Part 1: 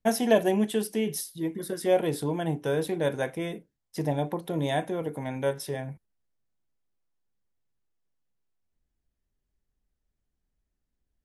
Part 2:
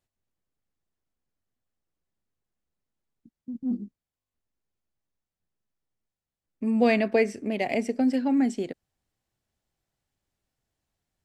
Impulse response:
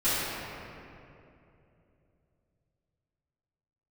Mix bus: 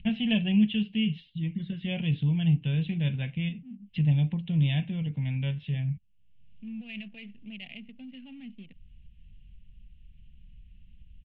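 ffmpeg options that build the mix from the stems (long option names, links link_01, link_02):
-filter_complex "[0:a]lowpass=frequency=3700:width=0.5412,lowpass=frequency=3700:width=1.3066,lowshelf=frequency=310:gain=9.5,acompressor=mode=upward:threshold=-34dB:ratio=2.5,volume=1.5dB[link_01];[1:a]highpass=frequency=140:width=0.5412,highpass=frequency=140:width=1.3066,alimiter=limit=-19.5dB:level=0:latency=1:release=27,adynamicsmooth=sensitivity=7.5:basefreq=610,volume=-7.5dB,asplit=2[link_02][link_03];[link_03]apad=whole_len=495769[link_04];[link_01][link_04]sidechaincompress=threshold=-44dB:ratio=8:attack=8.5:release=136[link_05];[link_05][link_02]amix=inputs=2:normalize=0,firequalizer=gain_entry='entry(190,0);entry(330,-24);entry(920,-21);entry(1300,-21);entry(2800,10);entry(5400,-29)':delay=0.05:min_phase=1"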